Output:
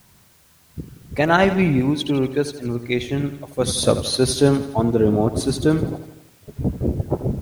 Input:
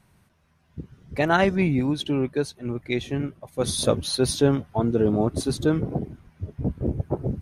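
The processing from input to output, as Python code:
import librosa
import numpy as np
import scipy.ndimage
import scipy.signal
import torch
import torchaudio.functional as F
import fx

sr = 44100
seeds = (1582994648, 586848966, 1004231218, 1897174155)

y = fx.bandpass_q(x, sr, hz=3800.0, q=0.55, at=(5.95, 6.48))
y = fx.quant_dither(y, sr, seeds[0], bits=10, dither='triangular')
y = fx.echo_feedback(y, sr, ms=84, feedback_pct=58, wet_db=-13)
y = y * librosa.db_to_amplitude(4.0)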